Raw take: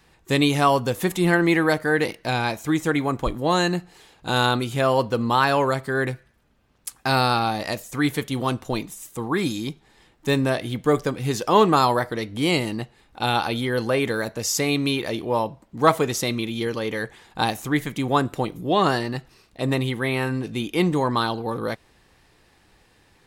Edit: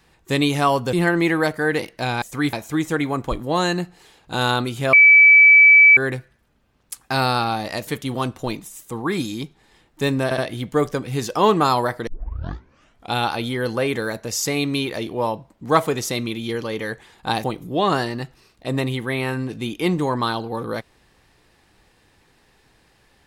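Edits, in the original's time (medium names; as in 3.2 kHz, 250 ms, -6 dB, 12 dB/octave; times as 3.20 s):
0.93–1.19 s: delete
4.88–5.92 s: bleep 2.3 kHz -6.5 dBFS
7.82–8.13 s: move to 2.48 s
10.50 s: stutter 0.07 s, 3 plays
12.19 s: tape start 1.07 s
17.56–18.38 s: delete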